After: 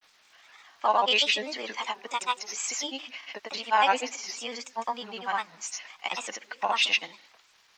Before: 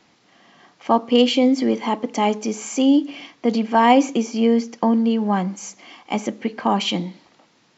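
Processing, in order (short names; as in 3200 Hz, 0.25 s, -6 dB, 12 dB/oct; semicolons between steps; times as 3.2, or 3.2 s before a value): HPF 1200 Hz 12 dB/oct; crackle 580/s -57 dBFS; grains, grains 20/s, pitch spread up and down by 3 st; gain +1.5 dB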